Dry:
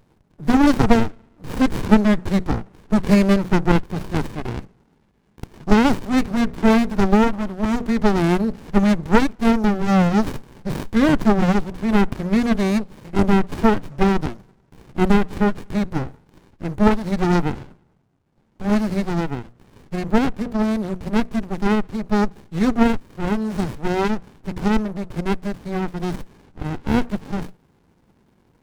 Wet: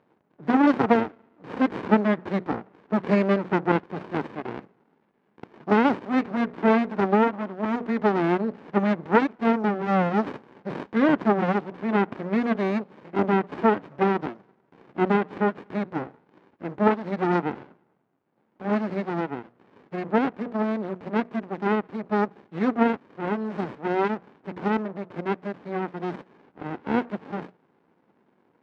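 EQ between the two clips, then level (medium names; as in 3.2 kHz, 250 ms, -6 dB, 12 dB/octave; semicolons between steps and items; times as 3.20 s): band-pass 270–2200 Hz; -1.5 dB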